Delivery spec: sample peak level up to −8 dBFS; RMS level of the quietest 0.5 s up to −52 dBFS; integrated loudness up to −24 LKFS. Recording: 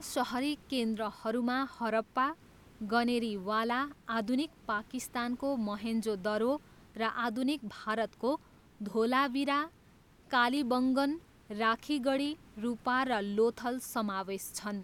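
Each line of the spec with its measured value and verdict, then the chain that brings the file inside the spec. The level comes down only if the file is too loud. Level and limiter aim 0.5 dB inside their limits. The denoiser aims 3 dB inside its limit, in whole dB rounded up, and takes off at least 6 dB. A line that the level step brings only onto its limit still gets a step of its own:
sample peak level −16.0 dBFS: in spec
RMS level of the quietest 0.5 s −61 dBFS: in spec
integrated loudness −33.0 LKFS: in spec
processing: no processing needed

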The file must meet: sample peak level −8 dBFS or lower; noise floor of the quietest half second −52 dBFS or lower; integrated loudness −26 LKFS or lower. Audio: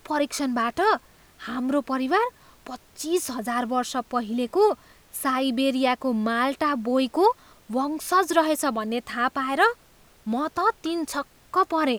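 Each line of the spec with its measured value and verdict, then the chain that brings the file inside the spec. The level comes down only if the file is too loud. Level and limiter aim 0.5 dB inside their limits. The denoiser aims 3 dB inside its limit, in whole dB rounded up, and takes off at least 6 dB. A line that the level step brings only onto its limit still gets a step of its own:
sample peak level −6.5 dBFS: out of spec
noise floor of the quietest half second −55 dBFS: in spec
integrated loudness −24.5 LKFS: out of spec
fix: level −2 dB

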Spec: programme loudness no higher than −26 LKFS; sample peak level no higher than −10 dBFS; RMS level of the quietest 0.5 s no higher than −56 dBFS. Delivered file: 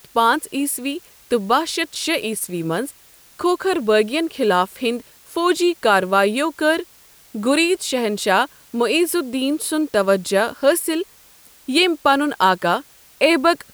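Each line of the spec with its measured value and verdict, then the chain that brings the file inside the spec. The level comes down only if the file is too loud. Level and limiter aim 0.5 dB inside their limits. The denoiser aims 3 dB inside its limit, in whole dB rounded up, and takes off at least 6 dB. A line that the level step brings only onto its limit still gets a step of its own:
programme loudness −19.0 LKFS: out of spec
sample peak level −3.5 dBFS: out of spec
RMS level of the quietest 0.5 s −49 dBFS: out of spec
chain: level −7.5 dB

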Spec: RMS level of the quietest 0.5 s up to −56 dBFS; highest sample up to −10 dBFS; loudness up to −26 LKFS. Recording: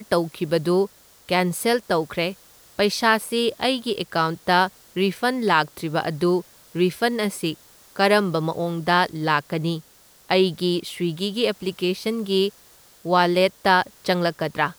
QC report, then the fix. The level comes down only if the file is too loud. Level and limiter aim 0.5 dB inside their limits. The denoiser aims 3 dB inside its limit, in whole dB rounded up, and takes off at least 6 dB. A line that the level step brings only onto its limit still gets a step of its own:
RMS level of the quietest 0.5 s −52 dBFS: out of spec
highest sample −5.0 dBFS: out of spec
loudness −22.5 LKFS: out of spec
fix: broadband denoise 6 dB, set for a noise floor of −52 dBFS
level −4 dB
brickwall limiter −10.5 dBFS

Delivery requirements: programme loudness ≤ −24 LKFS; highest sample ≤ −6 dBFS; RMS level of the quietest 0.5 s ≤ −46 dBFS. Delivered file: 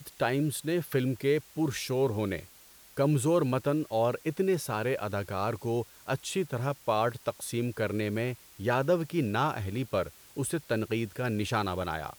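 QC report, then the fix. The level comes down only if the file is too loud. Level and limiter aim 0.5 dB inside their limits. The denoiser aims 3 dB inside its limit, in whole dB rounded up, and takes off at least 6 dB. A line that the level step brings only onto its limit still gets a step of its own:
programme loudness −30.5 LKFS: in spec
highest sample −13.5 dBFS: in spec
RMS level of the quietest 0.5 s −55 dBFS: in spec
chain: no processing needed

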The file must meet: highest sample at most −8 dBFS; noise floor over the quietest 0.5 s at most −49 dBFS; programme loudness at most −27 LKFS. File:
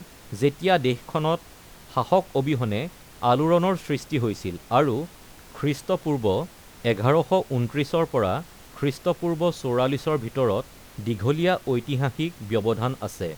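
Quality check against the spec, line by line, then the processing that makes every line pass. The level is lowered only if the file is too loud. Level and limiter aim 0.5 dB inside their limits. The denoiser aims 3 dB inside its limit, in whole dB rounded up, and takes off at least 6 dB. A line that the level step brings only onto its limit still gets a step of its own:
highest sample −6.0 dBFS: out of spec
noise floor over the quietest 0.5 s −47 dBFS: out of spec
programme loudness −24.5 LKFS: out of spec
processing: level −3 dB

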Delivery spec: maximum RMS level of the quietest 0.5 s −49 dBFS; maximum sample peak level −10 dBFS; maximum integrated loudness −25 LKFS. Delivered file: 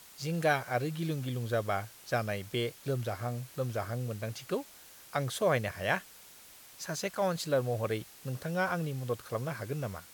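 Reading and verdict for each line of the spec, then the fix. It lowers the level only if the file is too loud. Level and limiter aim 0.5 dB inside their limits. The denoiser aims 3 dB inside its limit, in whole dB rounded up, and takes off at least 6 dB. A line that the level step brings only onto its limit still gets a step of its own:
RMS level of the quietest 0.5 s −54 dBFS: in spec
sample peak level −14.0 dBFS: in spec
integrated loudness −34.0 LKFS: in spec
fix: no processing needed

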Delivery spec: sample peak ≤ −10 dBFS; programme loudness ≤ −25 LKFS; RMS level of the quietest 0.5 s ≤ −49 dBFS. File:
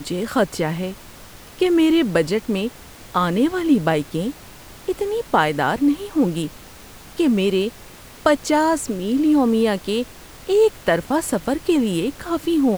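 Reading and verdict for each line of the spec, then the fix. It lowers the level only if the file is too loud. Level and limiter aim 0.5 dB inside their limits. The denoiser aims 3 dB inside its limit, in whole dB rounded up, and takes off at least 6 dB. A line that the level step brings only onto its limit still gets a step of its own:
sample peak −3.0 dBFS: out of spec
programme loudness −20.0 LKFS: out of spec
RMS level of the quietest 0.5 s −41 dBFS: out of spec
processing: broadband denoise 6 dB, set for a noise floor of −41 dBFS
level −5.5 dB
brickwall limiter −10.5 dBFS

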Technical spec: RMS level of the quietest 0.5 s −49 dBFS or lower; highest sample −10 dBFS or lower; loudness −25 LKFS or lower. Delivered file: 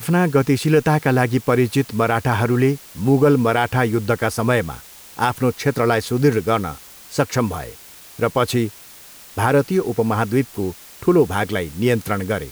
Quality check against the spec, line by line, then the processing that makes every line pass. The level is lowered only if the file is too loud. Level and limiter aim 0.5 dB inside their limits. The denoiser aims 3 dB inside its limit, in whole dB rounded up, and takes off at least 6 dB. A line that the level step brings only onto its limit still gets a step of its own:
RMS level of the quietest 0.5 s −42 dBFS: out of spec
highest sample −5.0 dBFS: out of spec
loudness −19.0 LKFS: out of spec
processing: broadband denoise 6 dB, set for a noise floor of −42 dBFS
level −6.5 dB

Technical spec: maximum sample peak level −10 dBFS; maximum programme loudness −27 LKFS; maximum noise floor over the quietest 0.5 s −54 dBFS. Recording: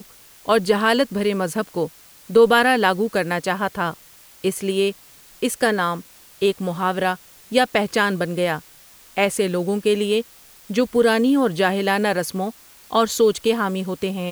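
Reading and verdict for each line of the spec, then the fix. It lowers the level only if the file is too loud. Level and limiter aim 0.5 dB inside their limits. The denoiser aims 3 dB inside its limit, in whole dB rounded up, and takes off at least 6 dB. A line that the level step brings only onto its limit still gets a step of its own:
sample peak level −2.5 dBFS: out of spec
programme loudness −20.5 LKFS: out of spec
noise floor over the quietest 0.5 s −48 dBFS: out of spec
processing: level −7 dB
brickwall limiter −10.5 dBFS

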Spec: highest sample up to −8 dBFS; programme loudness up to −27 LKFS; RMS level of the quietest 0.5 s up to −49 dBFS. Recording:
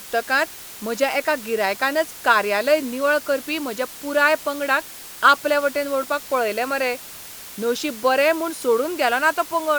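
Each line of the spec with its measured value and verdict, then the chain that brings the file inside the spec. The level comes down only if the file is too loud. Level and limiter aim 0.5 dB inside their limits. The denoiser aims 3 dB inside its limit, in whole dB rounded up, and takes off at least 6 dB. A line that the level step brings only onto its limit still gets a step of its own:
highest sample −2.5 dBFS: out of spec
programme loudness −21.0 LKFS: out of spec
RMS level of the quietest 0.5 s −38 dBFS: out of spec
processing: broadband denoise 8 dB, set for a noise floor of −38 dBFS
level −6.5 dB

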